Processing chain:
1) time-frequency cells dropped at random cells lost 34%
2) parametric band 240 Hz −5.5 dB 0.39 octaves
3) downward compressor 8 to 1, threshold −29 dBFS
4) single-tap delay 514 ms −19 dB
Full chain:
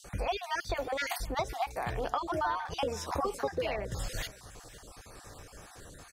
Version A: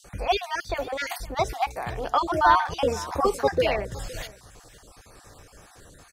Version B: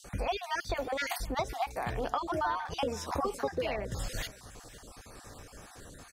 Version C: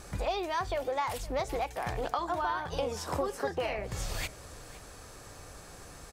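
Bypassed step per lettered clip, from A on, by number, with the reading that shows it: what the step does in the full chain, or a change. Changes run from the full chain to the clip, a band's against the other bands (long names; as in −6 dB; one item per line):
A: 3, average gain reduction 4.0 dB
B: 2, 250 Hz band +2.0 dB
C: 1, 2 kHz band −1.5 dB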